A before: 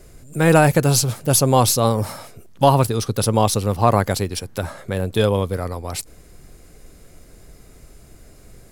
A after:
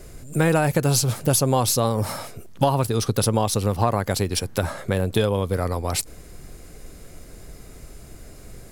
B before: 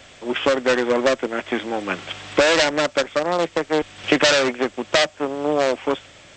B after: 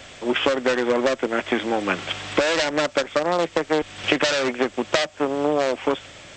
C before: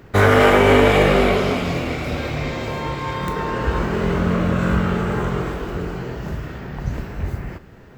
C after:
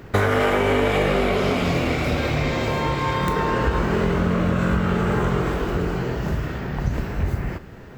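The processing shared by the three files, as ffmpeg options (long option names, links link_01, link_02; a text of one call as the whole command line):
ffmpeg -i in.wav -af "acompressor=threshold=-20dB:ratio=6,volume=3.5dB" out.wav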